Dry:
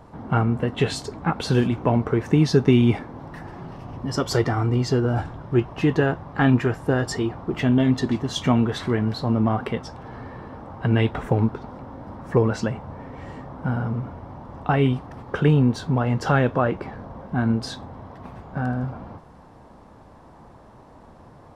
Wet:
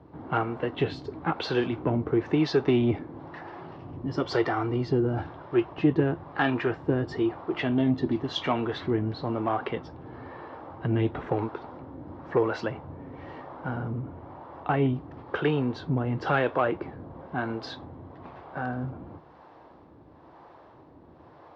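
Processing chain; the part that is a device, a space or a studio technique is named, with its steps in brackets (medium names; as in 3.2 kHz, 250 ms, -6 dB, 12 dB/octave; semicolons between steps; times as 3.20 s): 14.01–14.95 s: treble shelf 4 kHz -5.5 dB; guitar amplifier with harmonic tremolo (harmonic tremolo 1 Hz, depth 70%, crossover 410 Hz; saturation -13 dBFS, distortion -20 dB; cabinet simulation 87–4300 Hz, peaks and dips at 120 Hz -4 dB, 210 Hz -9 dB, 330 Hz +6 dB)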